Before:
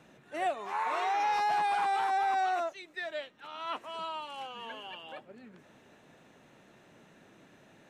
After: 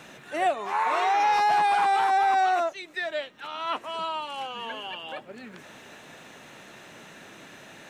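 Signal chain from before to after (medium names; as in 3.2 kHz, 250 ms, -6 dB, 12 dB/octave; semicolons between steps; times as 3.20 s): tape noise reduction on one side only encoder only; trim +7 dB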